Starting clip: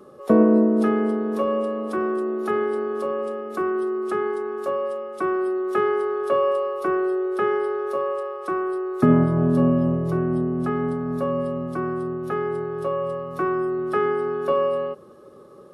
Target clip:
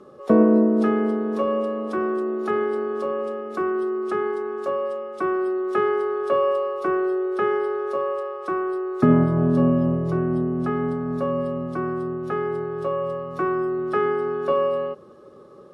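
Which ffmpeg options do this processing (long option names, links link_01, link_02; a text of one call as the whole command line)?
ffmpeg -i in.wav -af "lowpass=7200" out.wav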